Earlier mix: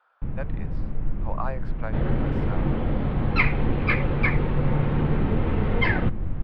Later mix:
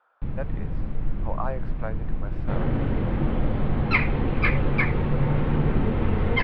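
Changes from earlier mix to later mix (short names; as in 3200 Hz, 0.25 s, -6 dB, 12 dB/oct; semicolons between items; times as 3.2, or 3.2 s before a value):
speech: add tilt -2.5 dB/oct; first sound: remove air absorption 310 m; second sound: entry +0.55 s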